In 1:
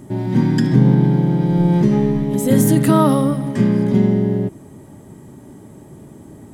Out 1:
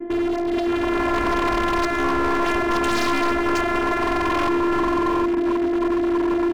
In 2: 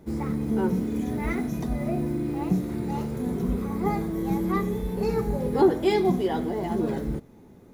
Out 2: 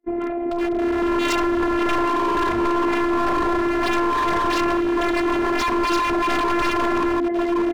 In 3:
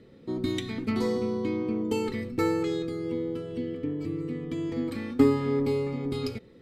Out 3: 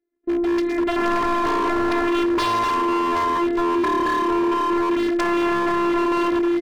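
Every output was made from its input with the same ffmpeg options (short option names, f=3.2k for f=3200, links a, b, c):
-af "aresample=11025,asoftclip=type=hard:threshold=-15dB,aresample=44100,highpass=140,equalizer=f=150:t=q:w=4:g=-5,equalizer=f=230:t=q:w=4:g=8,equalizer=f=340:t=q:w=4:g=7,equalizer=f=760:t=q:w=4:g=5,equalizer=f=1.9k:t=q:w=4:g=8,lowpass=f=2.4k:w=0.5412,lowpass=f=2.4k:w=1.3066,aecho=1:1:4.7:0.33,aecho=1:1:764|1528|2292:0.251|0.0502|0.01,acompressor=threshold=-18dB:ratio=10,aeval=exprs='0.266*(cos(1*acos(clip(val(0)/0.266,-1,1)))-cos(1*PI/2))+0.0266*(cos(3*acos(clip(val(0)/0.266,-1,1)))-cos(3*PI/2))+0.119*(cos(5*acos(clip(val(0)/0.266,-1,1)))-cos(5*PI/2))+0.00531*(cos(7*acos(clip(val(0)/0.266,-1,1)))-cos(7*PI/2))':c=same,agate=range=-36dB:threshold=-34dB:ratio=16:detection=peak,afftfilt=real='hypot(re,im)*cos(PI*b)':imag='0':win_size=512:overlap=0.75,dynaudnorm=f=240:g=7:m=13dB,aeval=exprs='0.168*(abs(mod(val(0)/0.168+3,4)-2)-1)':c=same"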